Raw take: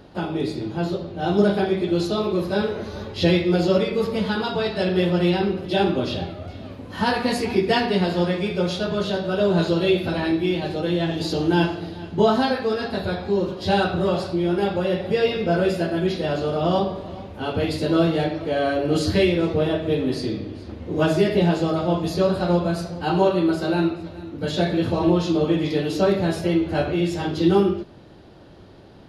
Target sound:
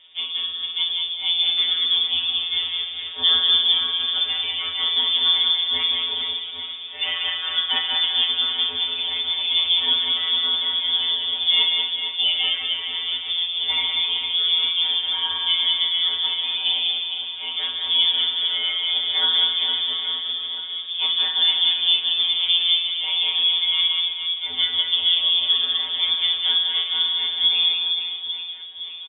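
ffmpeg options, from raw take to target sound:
-af "aecho=1:1:190|456|828.4|1350|2080:0.631|0.398|0.251|0.158|0.1,afftfilt=real='hypot(re,im)*cos(PI*b)':imag='0':win_size=1024:overlap=0.75,lowpass=f=3100:t=q:w=0.5098,lowpass=f=3100:t=q:w=0.6013,lowpass=f=3100:t=q:w=0.9,lowpass=f=3100:t=q:w=2.563,afreqshift=-3700"

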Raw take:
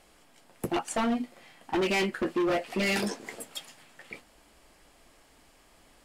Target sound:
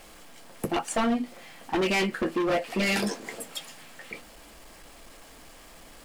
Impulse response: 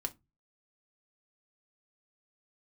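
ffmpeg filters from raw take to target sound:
-filter_complex "[0:a]aeval=exprs='val(0)+0.5*0.00316*sgn(val(0))':c=same,asplit=2[s0][s1];[1:a]atrim=start_sample=2205,asetrate=57330,aresample=44100[s2];[s1][s2]afir=irnorm=-1:irlink=0,volume=0.398[s3];[s0][s3]amix=inputs=2:normalize=0"

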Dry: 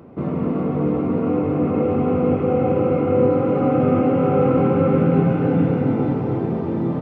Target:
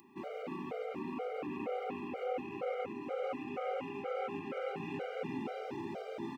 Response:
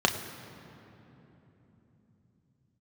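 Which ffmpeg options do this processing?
-filter_complex "[0:a]aderivative,acompressor=threshold=0.00794:ratio=6,atempo=1.1,asplit=2[s0][s1];[1:a]atrim=start_sample=2205,lowpass=2300[s2];[s1][s2]afir=irnorm=-1:irlink=0,volume=0.0944[s3];[s0][s3]amix=inputs=2:normalize=0,afftfilt=real='re*gt(sin(2*PI*2.1*pts/sr)*(1-2*mod(floor(b*sr/1024/400),2)),0)':imag='im*gt(sin(2*PI*2.1*pts/sr)*(1-2*mod(floor(b*sr/1024/400),2)),0)':win_size=1024:overlap=0.75,volume=2.66"

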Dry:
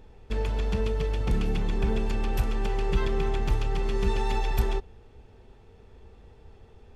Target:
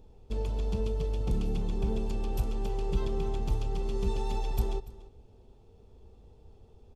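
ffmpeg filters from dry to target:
-af "equalizer=f=1800:t=o:w=1.1:g=-15,aecho=1:1:289:0.119,volume=0.668"

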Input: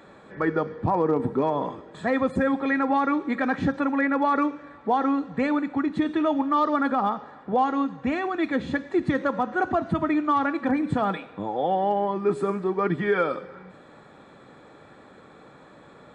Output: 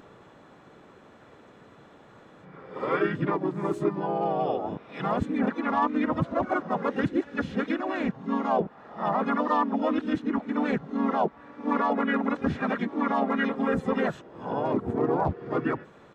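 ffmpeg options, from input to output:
-filter_complex "[0:a]areverse,asplit=4[s0][s1][s2][s3];[s1]asetrate=33038,aresample=44100,atempo=1.33484,volume=0.501[s4];[s2]asetrate=37084,aresample=44100,atempo=1.18921,volume=0.794[s5];[s3]asetrate=66075,aresample=44100,atempo=0.66742,volume=0.251[s6];[s0][s4][s5][s6]amix=inputs=4:normalize=0,volume=0.531"

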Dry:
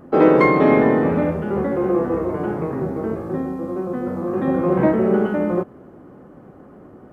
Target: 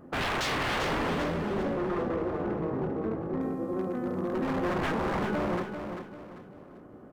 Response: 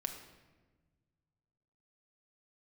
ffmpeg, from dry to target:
-filter_complex "[0:a]aeval=exprs='0.126*(abs(mod(val(0)/0.126+3,4)-2)-1)':c=same,asettb=1/sr,asplit=3[s0][s1][s2];[s0]atrim=end=1.234[s3];[s1]atrim=start=1.23:end=3.41,asetpts=PTS-STARTPTS,afade=t=in:d=0.004:c=qsin,afade=t=out:st=2.176:d=0.004:c=qsin,lowpass=f=1500:p=1[s4];[s2]atrim=start=3.406[s5];[s3][s4]acrossfade=d=0.004:c1=hsin:c2=qsin[s6];[s6][s5]acrossfade=d=0.004:c1=qsin:c2=hsin,aecho=1:1:393|786|1179|1572:0.422|0.152|0.0547|0.0197,volume=0.447"

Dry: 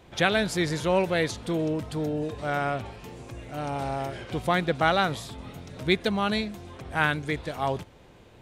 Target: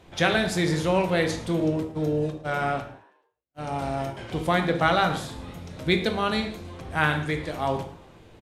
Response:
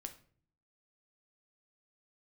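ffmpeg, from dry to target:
-filter_complex "[0:a]asettb=1/sr,asplit=3[s0][s1][s2];[s0]atrim=end=1.604[s3];[s1]atrim=start=1.6:end=4.17,asetpts=PTS-STARTPTS,afade=t=in:d=0.004:c=qsin,afade=t=out:st=2.566:d=0.004:c=qsin,agate=range=0.00141:threshold=0.0282:ratio=16:detection=peak[s4];[s2]atrim=start=4.166[s5];[s3][s4]acrossfade=d=0.004:c1=hsin:c2=qsin[s6];[s6][s5]acrossfade=d=0.004:c1=qsin:c2=hsin,asplit=5[s7][s8][s9][s10][s11];[s8]adelay=108,afreqshift=84,volume=0.075[s12];[s9]adelay=216,afreqshift=168,volume=0.0412[s13];[s10]adelay=324,afreqshift=252,volume=0.0226[s14];[s11]adelay=432,afreqshift=336,volume=0.0124[s15];[s7][s12][s13][s14][s15]amix=inputs=5:normalize=0[s16];[1:a]atrim=start_sample=2205,afade=t=out:st=0.17:d=0.01,atrim=end_sample=7938,asetrate=26460,aresample=44100[s17];[s16][s17]afir=irnorm=-1:irlink=0,volume=1.33"

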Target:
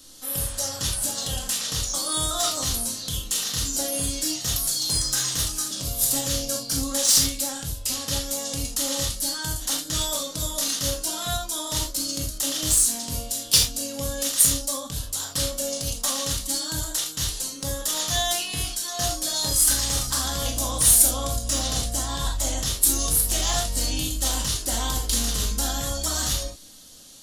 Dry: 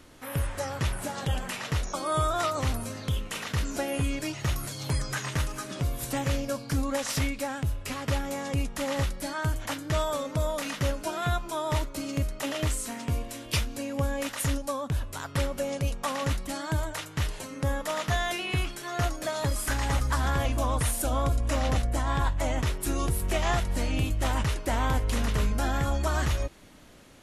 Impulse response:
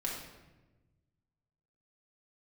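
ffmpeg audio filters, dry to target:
-filter_complex "[0:a]aexciter=amount=8.2:drive=8.5:freq=3400,highshelf=f=4500:g=-7,aeval=exprs='0.944*(cos(1*acos(clip(val(0)/0.944,-1,1)))-cos(1*PI/2))+0.0531*(cos(7*acos(clip(val(0)/0.944,-1,1)))-cos(7*PI/2))':c=same[s0];[1:a]atrim=start_sample=2205,atrim=end_sample=3969[s1];[s0][s1]afir=irnorm=-1:irlink=0,volume=0.891"

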